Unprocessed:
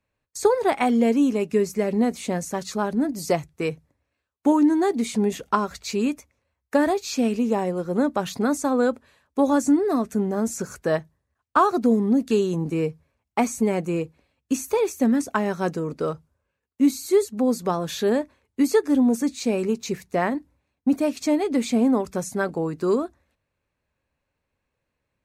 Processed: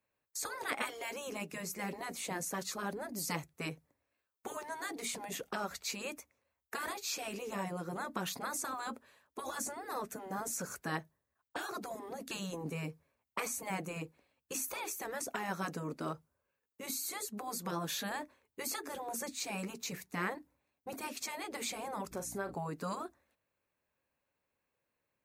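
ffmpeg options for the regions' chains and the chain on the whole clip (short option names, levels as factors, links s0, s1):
-filter_complex "[0:a]asettb=1/sr,asplit=3[s0][s1][s2];[s0]atrim=end=22.114[s3];[s1]atrim=start=22.11:end=22.55,asetpts=PTS-STARTPTS,afade=t=in:d=0.004:c=qsin,afade=t=out:st=0.436:d=0.004:c=qsin,aeval=exprs='val(0)+0.0126*(sin(2*PI*60*n/s)+sin(2*PI*2*60*n/s)/2+sin(2*PI*3*60*n/s)/3+sin(2*PI*4*60*n/s)/4+sin(2*PI*5*60*n/s)/5)':c=same,acompressor=threshold=0.02:ratio=2:attack=3.2:release=140:knee=1:detection=peak,asplit=2[s4][s5];[s5]adelay=40,volume=0.282[s6];[s4][s6]amix=inputs=2:normalize=0,atrim=end_sample=19404[s7];[s2]atrim=start=22.546[s8];[s3][s7]acrossfade=d=0.004:c1=hsin:c2=qsin[s9];[s9][s8]acrossfade=d=0.004:c1=qsin:c2=hsin,aemphasis=mode=production:type=bsi,afftfilt=real='re*lt(hypot(re,im),0.224)':imag='im*lt(hypot(re,im),0.224)':win_size=1024:overlap=0.75,highshelf=f=3300:g=-11.5,volume=0.668"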